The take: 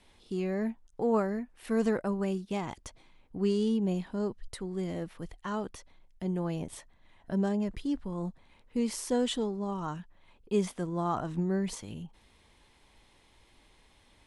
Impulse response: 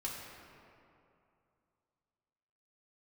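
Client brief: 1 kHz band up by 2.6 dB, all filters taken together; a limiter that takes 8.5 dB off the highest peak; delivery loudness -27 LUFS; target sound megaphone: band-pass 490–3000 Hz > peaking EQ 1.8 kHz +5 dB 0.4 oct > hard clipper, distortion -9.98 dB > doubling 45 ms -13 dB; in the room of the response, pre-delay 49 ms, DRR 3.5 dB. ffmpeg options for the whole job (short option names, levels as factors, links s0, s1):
-filter_complex "[0:a]equalizer=f=1000:t=o:g=3.5,alimiter=limit=0.0631:level=0:latency=1,asplit=2[s0][s1];[1:a]atrim=start_sample=2205,adelay=49[s2];[s1][s2]afir=irnorm=-1:irlink=0,volume=0.596[s3];[s0][s3]amix=inputs=2:normalize=0,highpass=490,lowpass=3000,equalizer=f=1800:t=o:w=0.4:g=5,asoftclip=type=hard:threshold=0.0178,asplit=2[s4][s5];[s5]adelay=45,volume=0.224[s6];[s4][s6]amix=inputs=2:normalize=0,volume=5.01"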